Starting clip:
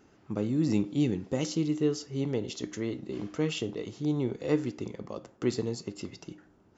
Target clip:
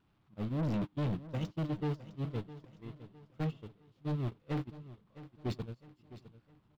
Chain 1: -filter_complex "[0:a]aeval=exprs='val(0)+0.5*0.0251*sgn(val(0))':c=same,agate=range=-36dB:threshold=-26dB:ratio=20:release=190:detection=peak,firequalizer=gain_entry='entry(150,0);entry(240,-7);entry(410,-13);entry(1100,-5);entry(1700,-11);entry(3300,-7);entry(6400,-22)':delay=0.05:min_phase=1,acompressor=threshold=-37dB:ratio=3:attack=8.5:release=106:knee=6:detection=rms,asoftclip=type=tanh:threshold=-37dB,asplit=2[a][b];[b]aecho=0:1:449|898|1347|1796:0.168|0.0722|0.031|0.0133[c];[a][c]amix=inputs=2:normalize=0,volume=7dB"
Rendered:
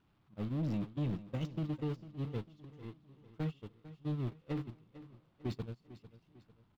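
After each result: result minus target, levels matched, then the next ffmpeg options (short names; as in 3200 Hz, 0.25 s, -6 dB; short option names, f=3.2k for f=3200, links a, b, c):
compressor: peak gain reduction +9 dB; echo 0.21 s early
-filter_complex "[0:a]aeval=exprs='val(0)+0.5*0.0251*sgn(val(0))':c=same,agate=range=-36dB:threshold=-26dB:ratio=20:release=190:detection=peak,firequalizer=gain_entry='entry(150,0);entry(240,-7);entry(410,-13);entry(1100,-5);entry(1700,-11);entry(3300,-7);entry(6400,-22)':delay=0.05:min_phase=1,asoftclip=type=tanh:threshold=-37dB,asplit=2[a][b];[b]aecho=0:1:449|898|1347|1796:0.168|0.0722|0.031|0.0133[c];[a][c]amix=inputs=2:normalize=0,volume=7dB"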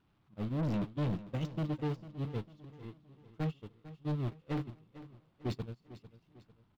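echo 0.21 s early
-filter_complex "[0:a]aeval=exprs='val(0)+0.5*0.0251*sgn(val(0))':c=same,agate=range=-36dB:threshold=-26dB:ratio=20:release=190:detection=peak,firequalizer=gain_entry='entry(150,0);entry(240,-7);entry(410,-13);entry(1100,-5);entry(1700,-11);entry(3300,-7);entry(6400,-22)':delay=0.05:min_phase=1,asoftclip=type=tanh:threshold=-37dB,asplit=2[a][b];[b]aecho=0:1:659|1318|1977|2636:0.168|0.0722|0.031|0.0133[c];[a][c]amix=inputs=2:normalize=0,volume=7dB"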